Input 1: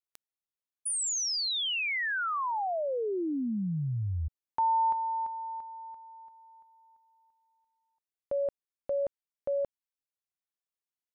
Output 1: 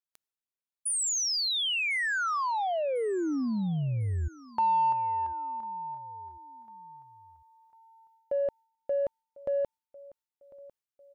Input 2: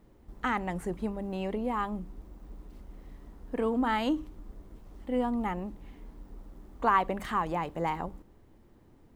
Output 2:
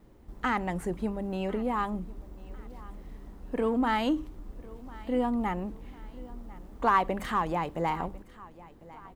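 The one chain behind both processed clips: feedback echo 1.049 s, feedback 40%, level -21.5 dB; in parallel at -9.5 dB: soft clip -30 dBFS; on the sum: gate with hold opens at -57 dBFS, closes at -58 dBFS, range -7 dB

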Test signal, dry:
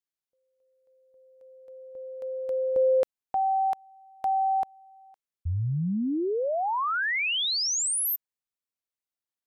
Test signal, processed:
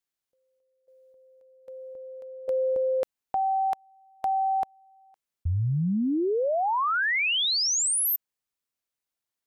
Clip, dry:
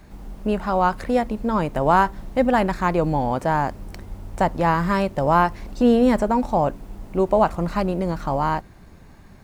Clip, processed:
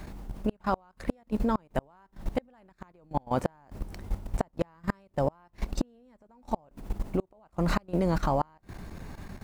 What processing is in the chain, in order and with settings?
flipped gate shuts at -12 dBFS, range -39 dB; level quantiser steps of 16 dB; gain +7 dB

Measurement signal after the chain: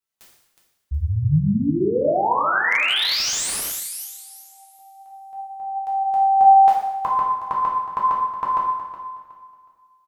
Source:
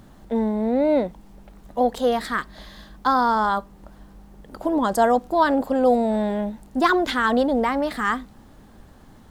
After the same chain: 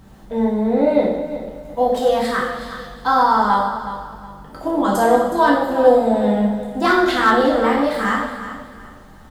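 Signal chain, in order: flange 0.34 Hz, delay 2.1 ms, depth 4.9 ms, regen +86%; on a send: feedback echo 0.368 s, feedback 28%, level -12.5 dB; on the sum: two-slope reverb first 0.83 s, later 2.4 s, from -18 dB, DRR -4.5 dB; slew limiter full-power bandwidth 350 Hz; gain +3 dB

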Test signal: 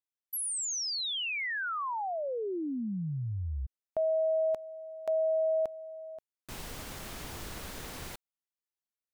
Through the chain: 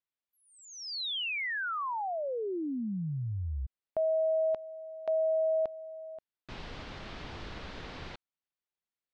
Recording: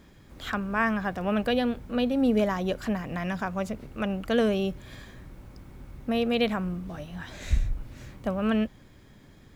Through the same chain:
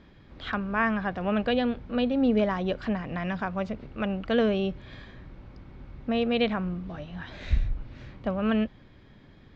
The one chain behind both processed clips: LPF 4400 Hz 24 dB/oct

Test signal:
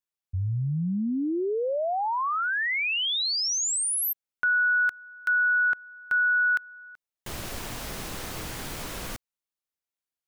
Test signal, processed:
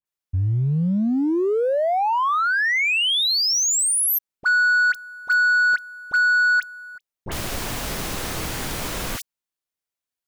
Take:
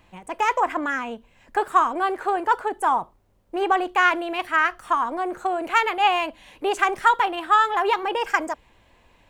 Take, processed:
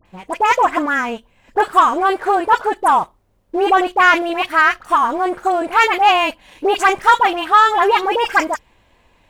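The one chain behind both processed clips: dispersion highs, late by 57 ms, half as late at 1600 Hz; sample leveller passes 1; gain +4 dB

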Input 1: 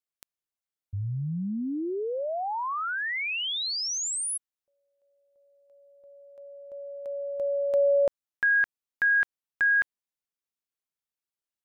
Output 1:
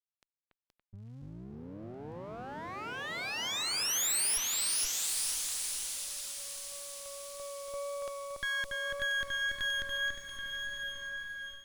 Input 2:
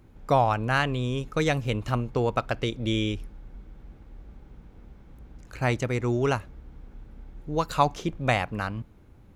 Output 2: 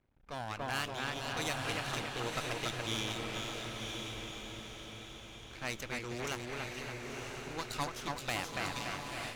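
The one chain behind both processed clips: pre-emphasis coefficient 0.9; on a send: split-band echo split 2600 Hz, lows 0.284 s, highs 0.473 s, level -3.5 dB; on the sum: low-pass opened by the level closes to 2000 Hz, open at -31.5 dBFS; half-wave rectifier; in parallel at -1 dB: compressor, threshold -55 dBFS; on the sum: diffused feedback echo 0.987 s, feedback 45%, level -4.5 dB; AGC gain up to 8.5 dB; one-sided clip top -18 dBFS; vibrato 1.8 Hz 9.5 cents; gain -3.5 dB

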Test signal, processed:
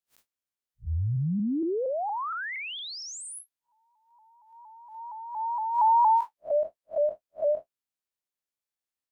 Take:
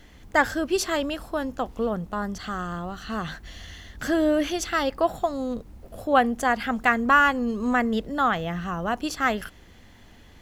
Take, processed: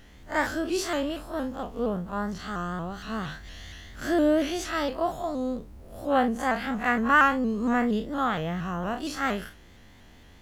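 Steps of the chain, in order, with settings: time blur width 81 ms; shaped vibrato saw up 4.3 Hz, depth 100 cents

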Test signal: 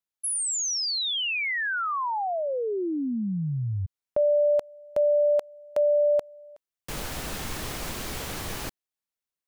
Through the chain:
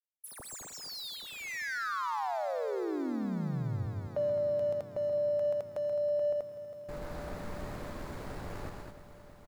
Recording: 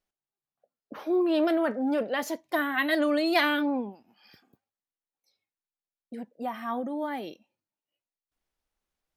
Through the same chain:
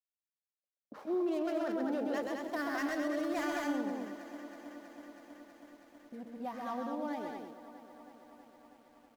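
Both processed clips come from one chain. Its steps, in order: median filter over 15 samples; expander -47 dBFS; loudspeakers at several distances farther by 45 m -5 dB, 73 m -5 dB; limiter -19.5 dBFS; lo-fi delay 0.322 s, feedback 80%, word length 9-bit, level -14.5 dB; gain -7.5 dB

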